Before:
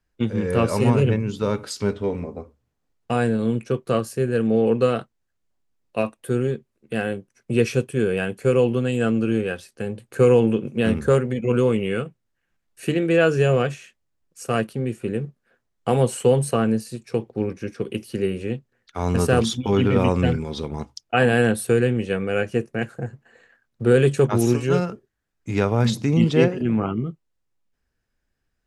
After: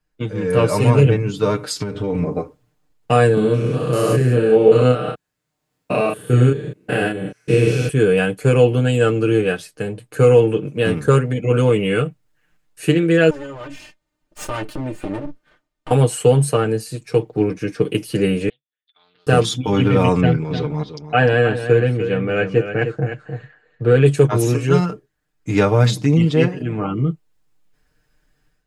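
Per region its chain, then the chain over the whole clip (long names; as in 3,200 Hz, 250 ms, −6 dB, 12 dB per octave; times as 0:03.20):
0:01.72–0:02.33: downward compressor 8 to 1, threshold −29 dBFS + low-shelf EQ 170 Hz +7 dB
0:03.34–0:07.89: spectrum averaged block by block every 200 ms + high-pass filter 48 Hz + double-tracking delay 32 ms −2 dB
0:13.30–0:15.91: lower of the sound and its delayed copy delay 3.3 ms + high-shelf EQ 7,100 Hz −10.5 dB + downward compressor 4 to 1, threshold −35 dBFS
0:18.49–0:19.27: resonant band-pass 3,500 Hz, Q 20 + high-frequency loss of the air 410 metres + highs frequency-modulated by the lows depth 0.29 ms
0:20.20–0:24.06: high-frequency loss of the air 140 metres + single-tap delay 302 ms −10 dB
whole clip: notch filter 5,800 Hz, Q 25; comb filter 6.6 ms, depth 80%; automatic gain control; level −1 dB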